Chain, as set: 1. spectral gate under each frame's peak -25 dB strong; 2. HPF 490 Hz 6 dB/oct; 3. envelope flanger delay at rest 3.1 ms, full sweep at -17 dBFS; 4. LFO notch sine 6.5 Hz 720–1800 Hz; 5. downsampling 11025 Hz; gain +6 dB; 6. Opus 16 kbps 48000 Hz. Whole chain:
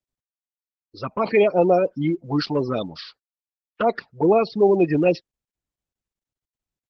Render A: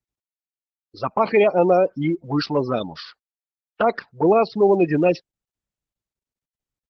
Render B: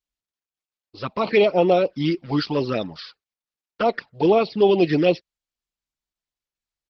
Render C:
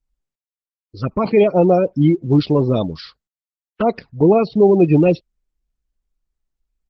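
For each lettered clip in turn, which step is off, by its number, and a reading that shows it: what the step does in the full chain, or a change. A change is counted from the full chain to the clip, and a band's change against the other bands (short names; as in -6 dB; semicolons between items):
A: 4, 1 kHz band +2.5 dB; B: 1, 4 kHz band +4.5 dB; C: 2, 125 Hz band +9.0 dB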